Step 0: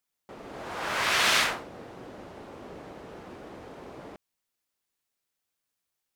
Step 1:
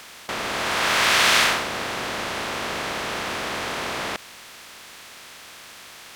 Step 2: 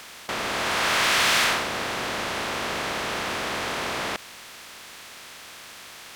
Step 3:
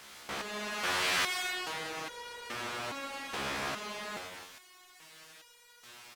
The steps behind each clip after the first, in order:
compressor on every frequency bin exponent 0.4; level +3 dB
soft clipping −15.5 dBFS, distortion −14 dB
loudspeakers that aren't time-aligned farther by 36 metres −9 dB, 93 metres −11 dB; step-sequenced resonator 2.4 Hz 69–480 Hz

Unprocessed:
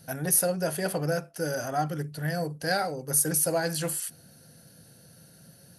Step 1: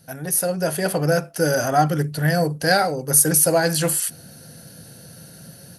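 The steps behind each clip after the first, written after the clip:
automatic gain control gain up to 11 dB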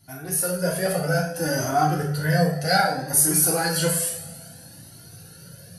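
coupled-rooms reverb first 0.52 s, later 2.3 s, from −18 dB, DRR −3.5 dB
flanger whose copies keep moving one way rising 0.61 Hz
level −2.5 dB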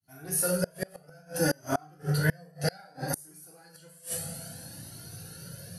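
fade in at the beginning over 0.61 s
gate with flip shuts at −14 dBFS, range −31 dB

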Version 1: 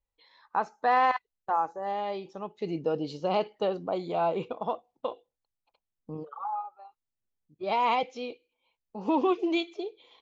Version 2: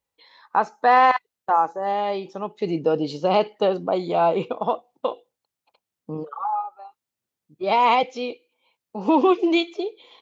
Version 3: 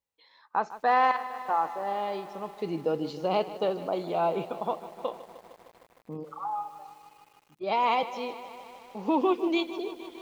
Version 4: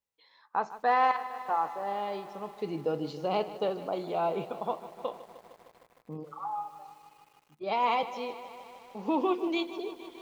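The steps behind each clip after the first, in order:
high-pass filter 120 Hz; level +8 dB
feedback echo at a low word length 153 ms, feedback 80%, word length 7 bits, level −15 dB; level −7.5 dB
convolution reverb RT60 0.40 s, pre-delay 3 ms, DRR 14.5 dB; level −2.5 dB

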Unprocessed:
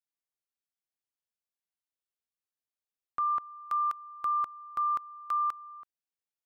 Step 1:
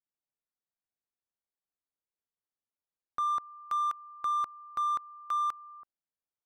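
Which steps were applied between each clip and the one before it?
adaptive Wiener filter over 15 samples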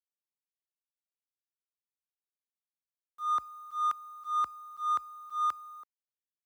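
volume swells 148 ms
frequency shifter +34 Hz
bit reduction 11 bits
level +2 dB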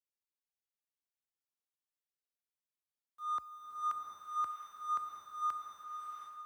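slow-attack reverb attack 720 ms, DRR 0.5 dB
level −7 dB

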